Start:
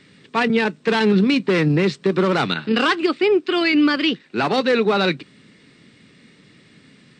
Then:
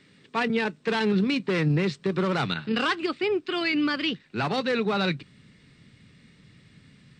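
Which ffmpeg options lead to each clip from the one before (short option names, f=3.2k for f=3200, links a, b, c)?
-af "asubboost=boost=5.5:cutoff=130,volume=-6.5dB"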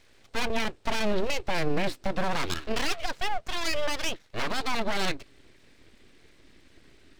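-af "aeval=exprs='abs(val(0))':c=same"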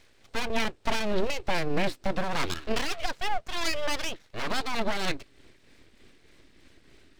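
-af "tremolo=f=3.3:d=0.43,volume=1.5dB"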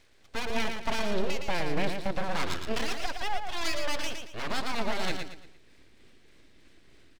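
-af "aecho=1:1:114|228|342|456:0.501|0.17|0.0579|0.0197,volume=-3dB"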